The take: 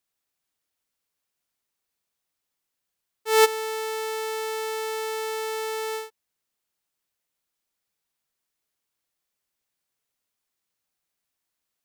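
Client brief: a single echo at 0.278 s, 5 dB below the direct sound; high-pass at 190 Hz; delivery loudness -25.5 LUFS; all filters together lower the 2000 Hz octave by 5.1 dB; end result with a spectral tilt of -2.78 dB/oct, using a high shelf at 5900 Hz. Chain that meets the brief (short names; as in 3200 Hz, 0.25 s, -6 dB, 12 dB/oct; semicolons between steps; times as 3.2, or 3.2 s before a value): HPF 190 Hz; bell 2000 Hz -5.5 dB; high shelf 5900 Hz -4.5 dB; echo 0.278 s -5 dB; gain +2 dB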